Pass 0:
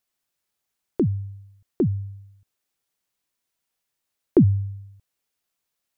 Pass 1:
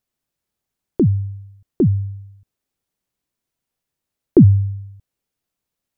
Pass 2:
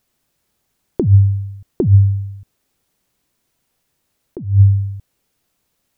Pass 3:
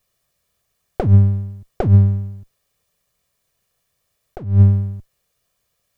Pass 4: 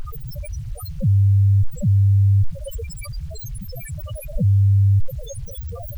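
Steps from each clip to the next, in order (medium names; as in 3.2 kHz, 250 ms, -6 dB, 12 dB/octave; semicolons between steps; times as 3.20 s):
bass shelf 500 Hz +11.5 dB; trim -3 dB
compressor with a negative ratio -18 dBFS, ratio -0.5; trim +8 dB
comb filter that takes the minimum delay 1.7 ms
one-bit comparator; loudest bins only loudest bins 2; word length cut 10-bit, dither none; trim +6.5 dB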